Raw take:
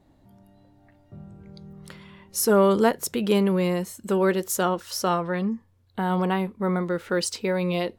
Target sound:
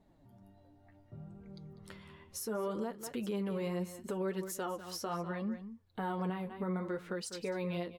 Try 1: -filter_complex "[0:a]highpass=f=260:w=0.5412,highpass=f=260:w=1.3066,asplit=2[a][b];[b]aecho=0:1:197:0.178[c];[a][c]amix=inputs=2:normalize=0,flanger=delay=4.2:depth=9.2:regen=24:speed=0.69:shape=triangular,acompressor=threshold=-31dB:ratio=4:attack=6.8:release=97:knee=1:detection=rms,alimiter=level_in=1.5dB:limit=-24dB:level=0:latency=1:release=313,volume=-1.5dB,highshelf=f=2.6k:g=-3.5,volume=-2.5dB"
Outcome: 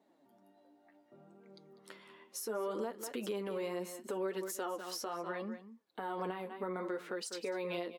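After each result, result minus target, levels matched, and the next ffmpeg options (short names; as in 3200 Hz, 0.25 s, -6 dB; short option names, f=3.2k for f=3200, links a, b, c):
compressor: peak gain reduction +13.5 dB; 250 Hz band -4.0 dB
-filter_complex "[0:a]highpass=f=260:w=0.5412,highpass=f=260:w=1.3066,asplit=2[a][b];[b]aecho=0:1:197:0.178[c];[a][c]amix=inputs=2:normalize=0,flanger=delay=4.2:depth=9.2:regen=24:speed=0.69:shape=triangular,alimiter=level_in=1.5dB:limit=-24dB:level=0:latency=1:release=313,volume=-1.5dB,highshelf=f=2.6k:g=-3.5,volume=-2.5dB"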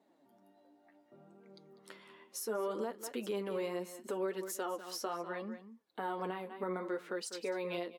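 250 Hz band -4.0 dB
-filter_complex "[0:a]asplit=2[a][b];[b]aecho=0:1:197:0.178[c];[a][c]amix=inputs=2:normalize=0,flanger=delay=4.2:depth=9.2:regen=24:speed=0.69:shape=triangular,alimiter=level_in=1.5dB:limit=-24dB:level=0:latency=1:release=313,volume=-1.5dB,highshelf=f=2.6k:g=-3.5,volume=-2.5dB"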